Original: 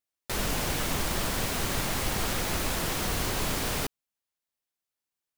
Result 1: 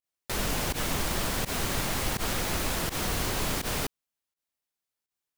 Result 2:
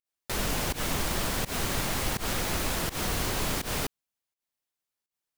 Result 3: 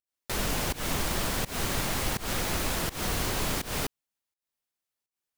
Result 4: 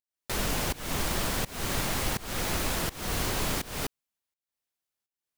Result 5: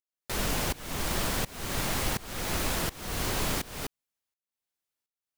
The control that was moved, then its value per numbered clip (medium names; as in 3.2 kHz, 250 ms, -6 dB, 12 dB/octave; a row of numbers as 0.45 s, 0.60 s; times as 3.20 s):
volume shaper, release: 75 ms, 124 ms, 191 ms, 341 ms, 529 ms